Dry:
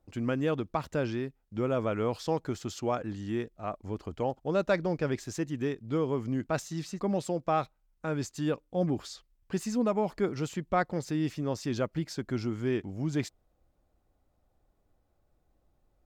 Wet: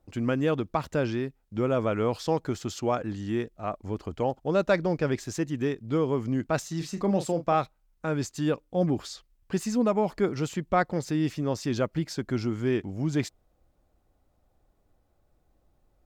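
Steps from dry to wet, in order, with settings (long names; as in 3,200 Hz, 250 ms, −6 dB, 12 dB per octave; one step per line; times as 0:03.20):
0:06.77–0:07.55: double-tracking delay 36 ms −9.5 dB
level +3.5 dB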